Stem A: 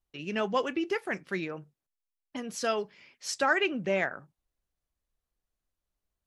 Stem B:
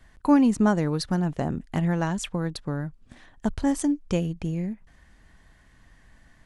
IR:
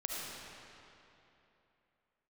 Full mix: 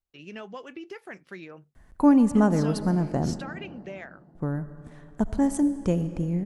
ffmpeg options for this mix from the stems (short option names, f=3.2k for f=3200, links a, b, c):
-filter_complex "[0:a]acompressor=threshold=-30dB:ratio=6,volume=-6dB[a];[1:a]equalizer=f=3.5k:t=o:w=2.1:g=-10,adelay=1750,volume=-0.5dB,asplit=3[b][c][d];[b]atrim=end=3.42,asetpts=PTS-STARTPTS,afade=t=out:st=3.416:d=0.004:c=hsin[e];[c]atrim=start=3.42:end=4.35,asetpts=PTS-STARTPTS,volume=0[f];[d]atrim=start=4.35,asetpts=PTS-STARTPTS,afade=t=in:d=0.004:c=hsin[g];[e][f][g]concat=n=3:v=0:a=1,asplit=2[h][i];[i]volume=-11.5dB[j];[2:a]atrim=start_sample=2205[k];[j][k]afir=irnorm=-1:irlink=0[l];[a][h][l]amix=inputs=3:normalize=0"